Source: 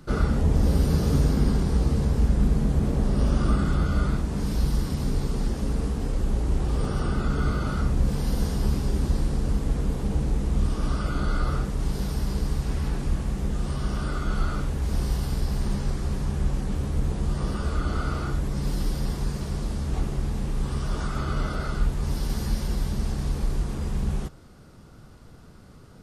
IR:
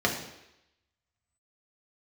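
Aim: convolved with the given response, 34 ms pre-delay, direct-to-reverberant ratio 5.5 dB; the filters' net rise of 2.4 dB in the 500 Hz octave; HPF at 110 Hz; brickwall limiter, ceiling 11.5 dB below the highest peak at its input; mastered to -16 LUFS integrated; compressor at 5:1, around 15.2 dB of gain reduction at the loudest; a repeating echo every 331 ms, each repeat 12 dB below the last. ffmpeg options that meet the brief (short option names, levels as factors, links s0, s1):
-filter_complex "[0:a]highpass=110,equalizer=f=500:t=o:g=3,acompressor=threshold=0.0141:ratio=5,alimiter=level_in=4.73:limit=0.0631:level=0:latency=1,volume=0.211,aecho=1:1:331|662|993:0.251|0.0628|0.0157,asplit=2[s0][s1];[1:a]atrim=start_sample=2205,adelay=34[s2];[s1][s2]afir=irnorm=-1:irlink=0,volume=0.126[s3];[s0][s3]amix=inputs=2:normalize=0,volume=26.6"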